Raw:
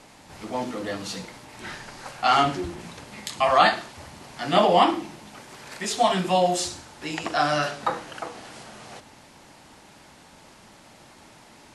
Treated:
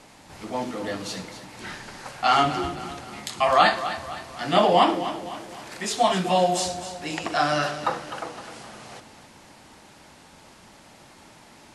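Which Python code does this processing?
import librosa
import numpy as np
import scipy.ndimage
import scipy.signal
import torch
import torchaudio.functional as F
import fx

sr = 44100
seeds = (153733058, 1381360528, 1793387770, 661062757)

y = fx.echo_feedback(x, sr, ms=257, feedback_pct=47, wet_db=-12.0)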